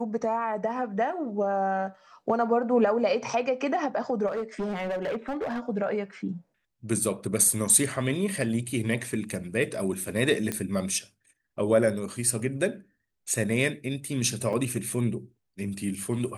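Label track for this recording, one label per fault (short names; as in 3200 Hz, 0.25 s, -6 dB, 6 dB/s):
4.270000	5.600000	clipped -26.5 dBFS
10.520000	10.520000	pop -13 dBFS
14.530000	14.530000	gap 3.6 ms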